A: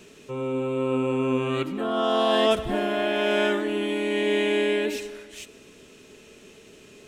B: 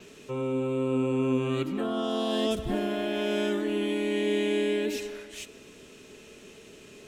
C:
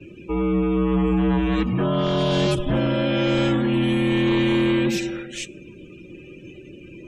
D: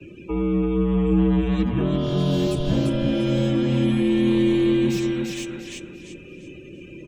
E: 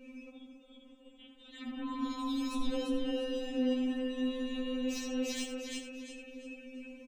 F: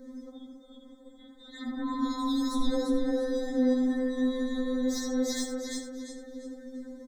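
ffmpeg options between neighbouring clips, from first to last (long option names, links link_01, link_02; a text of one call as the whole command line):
ffmpeg -i in.wav -filter_complex "[0:a]adynamicequalizer=threshold=0.00112:dfrequency=8900:dqfactor=3.3:tfrequency=8900:tqfactor=3.3:attack=5:release=100:ratio=0.375:range=2:mode=cutabove:tftype=bell,acrossover=split=400|3900[link_01][link_02][link_03];[link_02]acompressor=threshold=-34dB:ratio=6[link_04];[link_01][link_04][link_03]amix=inputs=3:normalize=0" out.wav
ffmpeg -i in.wav -af "aeval=exprs='0.168*sin(PI/2*2*val(0)/0.168)':channel_layout=same,afftdn=noise_reduction=27:noise_floor=-40,afreqshift=-75" out.wav
ffmpeg -i in.wav -filter_complex "[0:a]aecho=1:1:344|688|1032|1376:0.562|0.169|0.0506|0.0152,acrossover=split=100|480|3600[link_01][link_02][link_03][link_04];[link_03]acompressor=threshold=-36dB:ratio=6[link_05];[link_04]asoftclip=type=tanh:threshold=-34dB[link_06];[link_01][link_02][link_05][link_06]amix=inputs=4:normalize=0" out.wav
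ffmpeg -i in.wav -af "alimiter=limit=-20dB:level=0:latency=1:release=13,aecho=1:1:81:0.299,afftfilt=real='re*3.46*eq(mod(b,12),0)':imag='im*3.46*eq(mod(b,12),0)':win_size=2048:overlap=0.75,volume=-2dB" out.wav
ffmpeg -i in.wav -af "asuperstop=centerf=2700:order=20:qfactor=2.2,volume=6dB" out.wav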